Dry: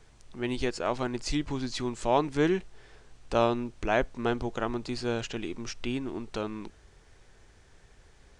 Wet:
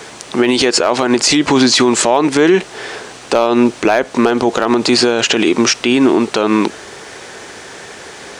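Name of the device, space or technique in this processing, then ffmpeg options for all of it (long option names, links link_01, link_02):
loud club master: -af "highpass=280,acompressor=threshold=-31dB:ratio=2.5,asoftclip=type=hard:threshold=-21.5dB,alimiter=level_in=31.5dB:limit=-1dB:release=50:level=0:latency=1,volume=-1dB"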